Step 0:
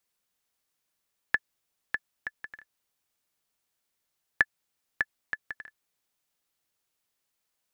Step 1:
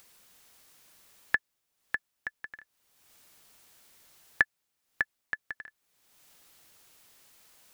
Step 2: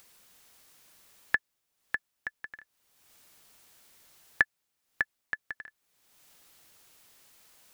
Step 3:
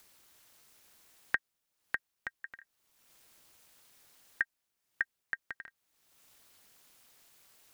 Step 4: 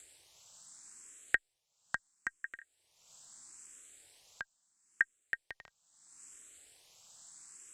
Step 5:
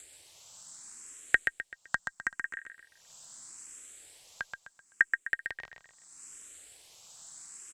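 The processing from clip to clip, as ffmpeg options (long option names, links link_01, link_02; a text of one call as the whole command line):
ffmpeg -i in.wav -af "acompressor=mode=upward:threshold=-42dB:ratio=2.5" out.wav
ffmpeg -i in.wav -af anull out.wav
ffmpeg -i in.wav -af "alimiter=limit=-11.5dB:level=0:latency=1:release=77,aeval=exprs='val(0)*sin(2*PI*130*n/s)':channel_layout=same" out.wav
ffmpeg -i in.wav -filter_complex "[0:a]lowpass=frequency=7700:width_type=q:width=8.3,asplit=2[link_01][link_02];[link_02]afreqshift=0.76[link_03];[link_01][link_03]amix=inputs=2:normalize=1,volume=3dB" out.wav
ffmpeg -i in.wav -af "aecho=1:1:128|256|384|512:0.501|0.185|0.0686|0.0254,volume=5dB" out.wav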